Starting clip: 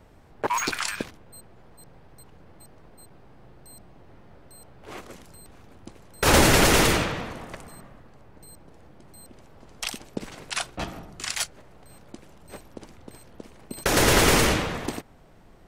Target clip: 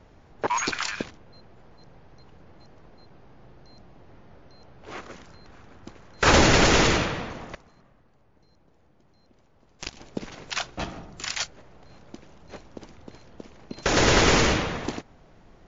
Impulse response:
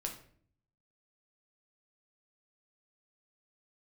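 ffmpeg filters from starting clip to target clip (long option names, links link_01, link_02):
-filter_complex "[0:a]asettb=1/sr,asplit=3[link_01][link_02][link_03];[link_01]atrim=end=4.934[link_04];[link_02]atrim=start=4.93:end=6.31,asetpts=PTS-STARTPTS,afade=type=in:duration=0.004:curve=qsin,afade=type=out:start_time=1.376:duration=0.004:curve=qsin,equalizer=frequency=1500:width_type=o:width=1.2:gain=5[link_05];[link_03]atrim=start=6.306[link_06];[link_04][link_05]acrossfade=duration=0.004:curve1=hsin:curve2=qsin[link_07];[link_07][link_06]acrossfade=duration=0.004:curve1=qsin:curve2=hsin,asettb=1/sr,asplit=3[link_08][link_09][link_10];[link_08]atrim=end=7.554[link_11];[link_09]atrim=start=7.55:end=9.97,asetpts=PTS-STARTPTS,afade=type=in:duration=0.004:curve=qsin,afade=type=out:start_time=2.416:duration=0.004:curve=qsin,aeval=exprs='0.188*(cos(1*acos(clip(val(0)/0.188,-1,1)))-cos(1*PI/2))+0.0841*(cos(2*acos(clip(val(0)/0.188,-1,1)))-cos(2*PI/2))+0.0473*(cos(3*acos(clip(val(0)/0.188,-1,1)))-cos(3*PI/2))+0.015*(cos(7*acos(clip(val(0)/0.188,-1,1)))-cos(7*PI/2))':channel_layout=same[link_12];[link_10]atrim=start=9.966[link_13];[link_11][link_12]acrossfade=duration=0.004:curve1=hsin:curve2=qsin[link_14];[link_14][link_13]acrossfade=duration=0.004:curve1=qsin:curve2=hsin" -ar 16000 -c:a wmav2 -b:a 64k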